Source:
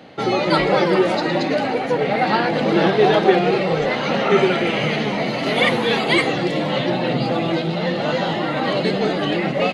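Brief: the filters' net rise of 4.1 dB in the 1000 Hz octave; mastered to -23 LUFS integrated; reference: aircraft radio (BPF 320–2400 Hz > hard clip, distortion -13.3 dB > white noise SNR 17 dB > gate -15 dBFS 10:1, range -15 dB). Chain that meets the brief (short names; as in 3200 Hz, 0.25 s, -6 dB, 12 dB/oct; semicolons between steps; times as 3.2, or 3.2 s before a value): BPF 320–2400 Hz; bell 1000 Hz +6 dB; hard clip -13 dBFS; white noise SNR 17 dB; gate -15 dBFS 10:1, range -15 dB; gain +1 dB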